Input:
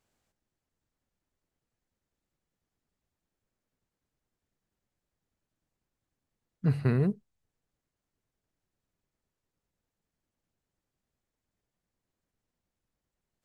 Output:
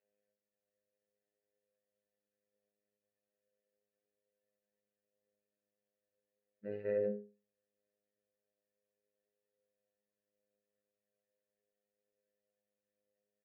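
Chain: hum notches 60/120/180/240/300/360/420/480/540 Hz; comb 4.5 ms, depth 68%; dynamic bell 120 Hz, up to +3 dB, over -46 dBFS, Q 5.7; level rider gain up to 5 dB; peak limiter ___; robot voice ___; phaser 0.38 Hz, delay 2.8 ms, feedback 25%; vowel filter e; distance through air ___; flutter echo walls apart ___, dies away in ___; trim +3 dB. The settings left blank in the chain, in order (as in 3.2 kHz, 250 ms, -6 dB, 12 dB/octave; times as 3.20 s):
-18.5 dBFS, 103 Hz, 340 m, 3.3 m, 0.29 s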